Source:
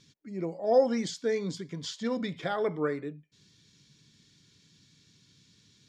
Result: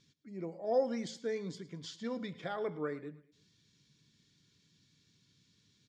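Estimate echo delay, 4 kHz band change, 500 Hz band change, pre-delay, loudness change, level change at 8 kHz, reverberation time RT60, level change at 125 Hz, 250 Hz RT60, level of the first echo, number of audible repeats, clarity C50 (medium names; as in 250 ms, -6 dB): 109 ms, -8.5 dB, -7.5 dB, no reverb, -7.5 dB, -9.5 dB, no reverb, -7.5 dB, no reverb, -18.5 dB, 3, no reverb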